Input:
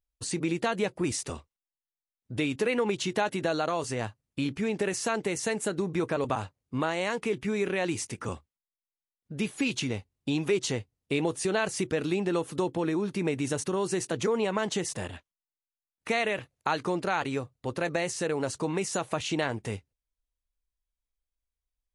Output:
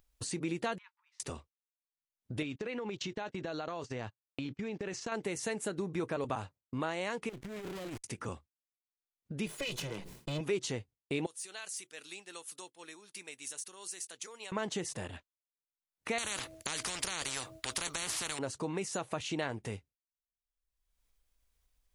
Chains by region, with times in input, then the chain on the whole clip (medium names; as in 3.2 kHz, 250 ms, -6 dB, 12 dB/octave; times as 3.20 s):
0.78–1.20 s: compression 3:1, threshold -41 dBFS + brick-wall FIR high-pass 860 Hz + distance through air 270 m
2.42–5.12 s: low-pass 6.6 kHz 24 dB/octave + gate -38 dBFS, range -26 dB + compression, threshold -28 dBFS
7.29–8.04 s: dead-time distortion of 0.26 ms + compressor with a negative ratio -32 dBFS, ratio -0.5 + valve stage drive 34 dB, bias 0.55
9.46–10.41 s: comb filter that takes the minimum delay 2 ms + resonant low shelf 120 Hz -8 dB, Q 3 + decay stretcher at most 73 dB/s
11.26–14.52 s: de-esser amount 60% + differentiator
16.18–18.39 s: de-hum 321.6 Hz, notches 2 + spectrum-flattening compressor 10:1
whole clip: expander -43 dBFS; upward compressor, threshold -29 dBFS; trim -6.5 dB